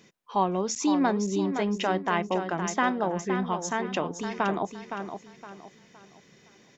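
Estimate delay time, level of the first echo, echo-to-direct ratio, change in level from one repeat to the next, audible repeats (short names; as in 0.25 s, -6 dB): 0.515 s, -8.0 dB, -7.5 dB, -9.5 dB, 3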